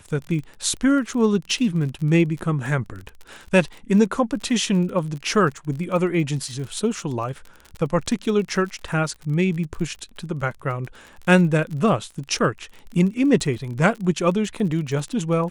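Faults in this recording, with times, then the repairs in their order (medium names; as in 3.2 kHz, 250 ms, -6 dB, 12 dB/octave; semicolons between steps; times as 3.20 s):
crackle 32 per s -30 dBFS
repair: de-click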